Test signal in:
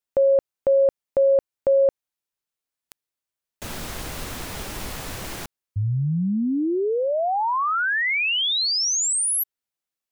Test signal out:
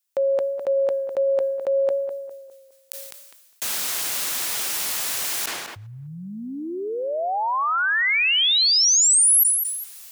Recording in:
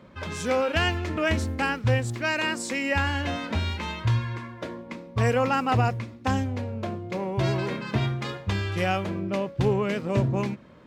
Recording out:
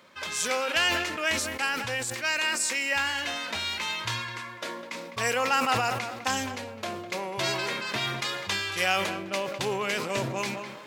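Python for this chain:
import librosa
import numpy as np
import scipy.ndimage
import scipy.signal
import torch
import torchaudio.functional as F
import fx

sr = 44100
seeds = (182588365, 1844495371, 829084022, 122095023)

y = fx.highpass(x, sr, hz=1300.0, slope=6)
y = fx.high_shelf(y, sr, hz=4200.0, db=9.5)
y = fx.rider(y, sr, range_db=3, speed_s=2.0)
y = fx.echo_tape(y, sr, ms=205, feedback_pct=34, wet_db=-13.5, lp_hz=2200.0, drive_db=4.0, wow_cents=24)
y = fx.sustainer(y, sr, db_per_s=41.0)
y = y * 10.0 ** (1.5 / 20.0)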